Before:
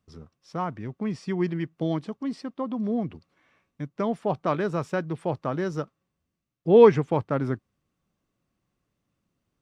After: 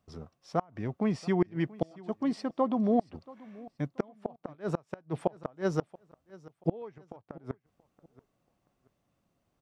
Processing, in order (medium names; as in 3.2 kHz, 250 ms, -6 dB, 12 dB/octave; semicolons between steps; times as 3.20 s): peaking EQ 700 Hz +8.5 dB 0.82 oct; inverted gate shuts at -14 dBFS, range -32 dB; feedback delay 681 ms, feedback 29%, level -21 dB